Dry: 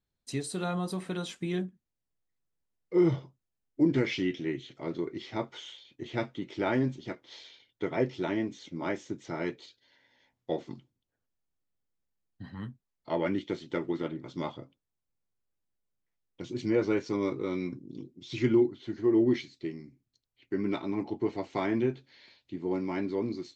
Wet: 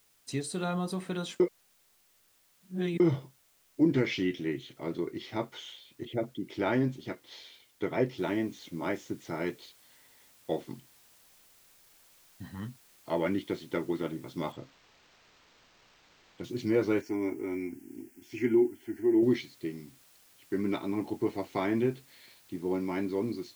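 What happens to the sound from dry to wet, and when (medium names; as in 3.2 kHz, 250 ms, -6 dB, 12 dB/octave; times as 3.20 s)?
1.40–3.00 s: reverse
6.05–6.50 s: resonances exaggerated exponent 2
8.18 s: noise floor step -67 dB -61 dB
14.52–16.44 s: decimation joined by straight lines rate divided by 4×
17.01–19.23 s: static phaser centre 770 Hz, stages 8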